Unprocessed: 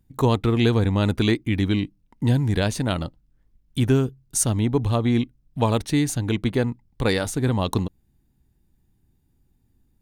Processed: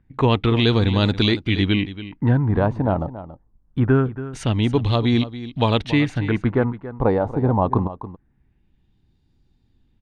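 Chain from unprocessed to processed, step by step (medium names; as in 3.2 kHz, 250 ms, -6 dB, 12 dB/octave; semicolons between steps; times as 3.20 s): LFO low-pass sine 0.24 Hz 830–4300 Hz; delay 280 ms -14 dB; loudness maximiser +7 dB; trim -5 dB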